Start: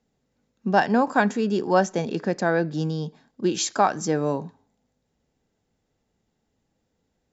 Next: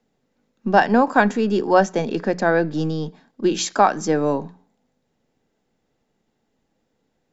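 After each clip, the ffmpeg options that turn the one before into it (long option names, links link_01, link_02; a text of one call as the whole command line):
ffmpeg -i in.wav -filter_complex "[0:a]bandreject=frequency=60:width_type=h:width=6,bandreject=frequency=120:width_type=h:width=6,bandreject=frequency=180:width_type=h:width=6,acrossover=split=130|3200[link_01][link_02][link_03];[link_01]aeval=exprs='abs(val(0))':channel_layout=same[link_04];[link_03]highshelf=frequency=4700:gain=-6.5[link_05];[link_04][link_02][link_05]amix=inputs=3:normalize=0,volume=4.5dB" out.wav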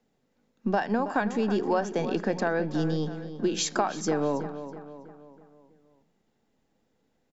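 ffmpeg -i in.wav -filter_complex "[0:a]acompressor=threshold=-20dB:ratio=6,asplit=2[link_01][link_02];[link_02]adelay=324,lowpass=frequency=3300:poles=1,volume=-11dB,asplit=2[link_03][link_04];[link_04]adelay=324,lowpass=frequency=3300:poles=1,volume=0.49,asplit=2[link_05][link_06];[link_06]adelay=324,lowpass=frequency=3300:poles=1,volume=0.49,asplit=2[link_07][link_08];[link_08]adelay=324,lowpass=frequency=3300:poles=1,volume=0.49,asplit=2[link_09][link_10];[link_10]adelay=324,lowpass=frequency=3300:poles=1,volume=0.49[link_11];[link_03][link_05][link_07][link_09][link_11]amix=inputs=5:normalize=0[link_12];[link_01][link_12]amix=inputs=2:normalize=0,volume=-2.5dB" out.wav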